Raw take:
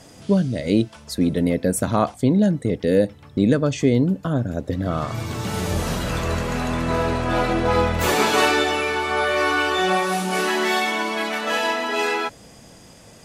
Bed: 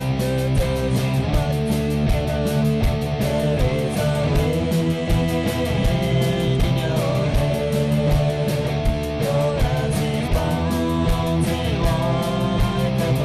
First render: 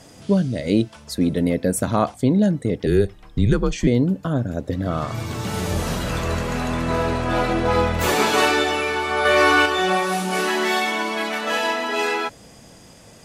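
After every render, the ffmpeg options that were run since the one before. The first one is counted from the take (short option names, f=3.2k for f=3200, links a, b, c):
-filter_complex "[0:a]asettb=1/sr,asplit=3[a][b][c];[a]atrim=end=2.864[d];[b]atrim=start=2.86:end=3.87,asetpts=PTS-STARTPTS,afade=t=in:d=0.004:c=qsin,afade=t=out:st=1.006:d=0.004:c=qsin,afreqshift=-110[e];[c]atrim=start=3.866[f];[d][e]acrossfade=d=0.004:c1=hsin:c2=qsin[g];[g][f]acrossfade=d=0.004:c1=qsin:c2=hsin,asettb=1/sr,asplit=3[h][i][j];[h]atrim=end=9.254[k];[i]atrim=start=9.25:end=9.66,asetpts=PTS-STARTPTS,afade=t=in:d=0.004:c=qsin,afade=t=out:st=0.406:d=0.004:c=qsin,acontrast=34[l];[j]atrim=start=9.656[m];[k][l]acrossfade=d=0.004:c1=hsin:c2=qsin[n];[n][m]acrossfade=d=0.004:c1=qsin:c2=hsin"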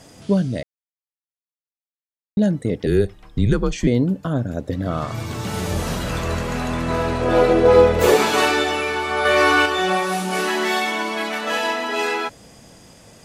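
-filter_complex "[0:a]asettb=1/sr,asplit=3[a][b][c];[a]atrim=end=7.214[d];[b]atrim=start=7.21:end=8.17,asetpts=PTS-STARTPTS,afade=t=in:d=0.004:c=qsin,afade=t=out:st=0.956:d=0.004:c=qsin,equalizer=f=450:w=2.3:g=13.5[e];[c]atrim=start=8.166[f];[d][e]acrossfade=d=0.004:c1=hsin:c2=qsin[g];[g][f]acrossfade=d=0.004:c1=qsin:c2=hsin,asplit=3[h][i][j];[h]atrim=end=0.63,asetpts=PTS-STARTPTS,afade=t=out:st=0.626:d=0.004:c=hsin[k];[i]atrim=start=0.63:end=2.37,asetpts=PTS-STARTPTS,volume=0[l];[j]atrim=start=2.37,asetpts=PTS-STARTPTS,afade=t=in:d=0.004:c=hsin[m];[k][l][m]concat=n=3:v=0:a=1"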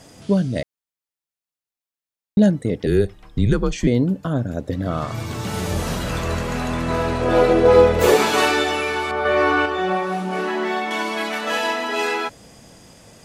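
-filter_complex "[0:a]asettb=1/sr,asplit=3[a][b][c];[a]atrim=end=9.114[d];[b]atrim=start=9.11:end=10.91,asetpts=PTS-STARTPTS,afade=t=in:d=0.004:c=qsin,afade=t=out:st=1.796:d=0.004:c=qsin,lowpass=f=1.3k:p=1[e];[c]atrim=start=10.906[f];[d][e]acrossfade=d=0.004:c1=hsin:c2=qsin[g];[g][f]acrossfade=d=0.004:c1=qsin:c2=hsin,asplit=3[h][i][j];[h]atrim=end=0.562[k];[i]atrim=start=0.558:end=2.502,asetpts=PTS-STARTPTS,volume=3.5dB[l];[j]atrim=start=2.498[m];[k][l]acrossfade=d=0.004:c1=hsin:c2=hsin[n];[n][m]acrossfade=d=0.004:c1=hsin:c2=hsin"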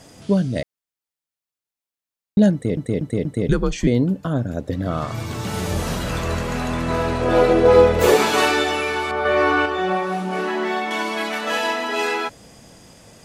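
-filter_complex "[0:a]asplit=5[a][b][c][d][e];[a]atrim=end=2.772[f];[b]atrim=start=2.528:end=2.772[g];[c]atrim=start=2.528:end=2.772[h];[d]atrim=start=2.528:end=2.772[i];[e]atrim=start=3.488[j];[f][g]acrossfade=d=0.004:c1=hsin:c2=hsin[k];[k][h]acrossfade=d=0.004:c1=hsin:c2=hsin[l];[l][i]acrossfade=d=0.004:c1=hsin:c2=hsin[m];[m][j]acrossfade=d=0.004:c1=hsin:c2=hsin"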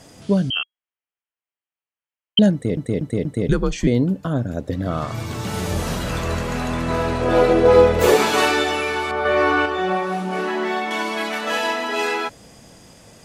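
-filter_complex "[0:a]asettb=1/sr,asplit=3[a][b][c];[a]atrim=end=0.504[d];[b]atrim=start=0.5:end=2.39,asetpts=PTS-STARTPTS,afade=t=in:d=0.004:c=qsin,afade=t=out:st=1.886:d=0.004:c=qsin,lowpass=f=2.8k:t=q:w=0.5098,lowpass=f=2.8k:t=q:w=0.6013,lowpass=f=2.8k:t=q:w=0.9,lowpass=f=2.8k:t=q:w=2.563,afreqshift=-3300[e];[c]atrim=start=2.386[f];[d][e]acrossfade=d=0.004:c1=hsin:c2=qsin[g];[g][f]acrossfade=d=0.004:c1=qsin:c2=hsin"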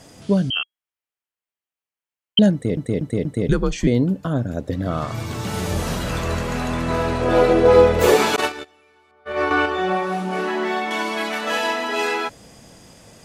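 -filter_complex "[0:a]asettb=1/sr,asplit=3[a][b][c];[a]atrim=end=8.364[d];[b]atrim=start=8.36:end=9.51,asetpts=PTS-STARTPTS,afade=t=in:d=0.004:c=qsin,afade=t=out:st=1.146:d=0.004:c=qsin,agate=range=-33dB:threshold=-17dB:ratio=16:release=100:detection=peak[e];[c]atrim=start=9.506[f];[d][e]acrossfade=d=0.004:c1=hsin:c2=qsin[g];[g][f]acrossfade=d=0.004:c1=qsin:c2=hsin"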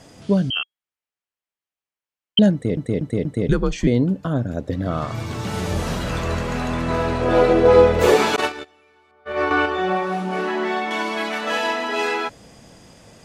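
-af "highshelf=f=9.1k:g=-9"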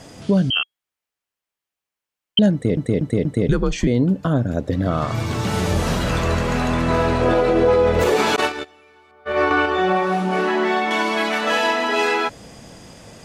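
-filter_complex "[0:a]asplit=2[a][b];[b]acompressor=threshold=-23dB:ratio=6,volume=-2dB[c];[a][c]amix=inputs=2:normalize=0,alimiter=limit=-8dB:level=0:latency=1:release=55"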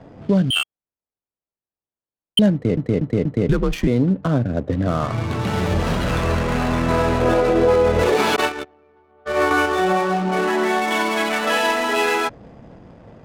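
-filter_complex "[0:a]acrossover=split=140|2800[a][b][c];[a]acrusher=bits=6:mode=log:mix=0:aa=0.000001[d];[d][b][c]amix=inputs=3:normalize=0,adynamicsmooth=sensitivity=5.5:basefreq=740"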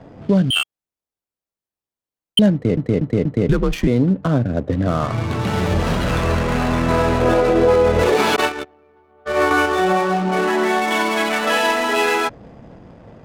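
-af "volume=1.5dB"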